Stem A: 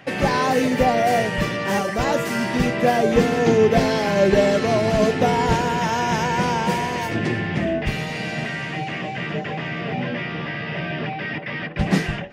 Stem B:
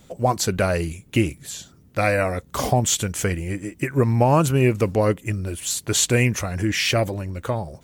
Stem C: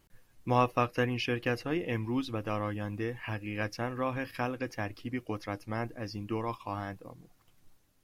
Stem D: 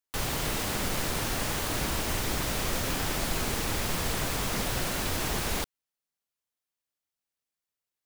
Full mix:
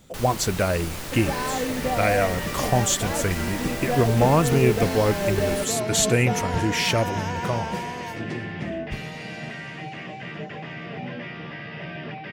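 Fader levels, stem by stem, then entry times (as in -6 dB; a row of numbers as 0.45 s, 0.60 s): -8.0 dB, -2.0 dB, mute, -4.0 dB; 1.05 s, 0.00 s, mute, 0.00 s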